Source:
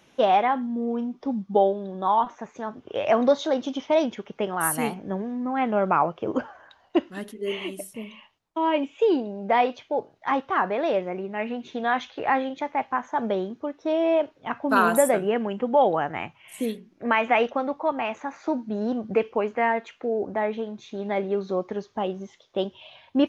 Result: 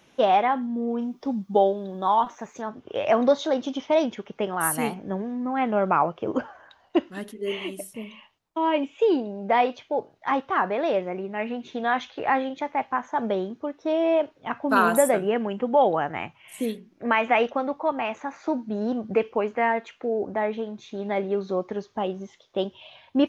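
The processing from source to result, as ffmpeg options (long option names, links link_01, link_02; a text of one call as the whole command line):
ffmpeg -i in.wav -filter_complex "[0:a]asettb=1/sr,asplit=3[link_01][link_02][link_03];[link_01]atrim=end=1.014[link_04];[link_02]atrim=start=1.01:end=2.62,asetpts=PTS-STARTPTS,afade=type=in:duration=0.004:curve=qsin,afade=type=out:start_time=1.606:duration=0.004:curve=qsin,aemphasis=mode=production:type=50kf[link_05];[link_03]atrim=start=2.616[link_06];[link_04][link_05]acrossfade=duration=0.004:curve1=hsin:curve2=qsin[link_07];[link_07][link_06]acrossfade=duration=0.004:curve1=qsin:curve2=hsin" out.wav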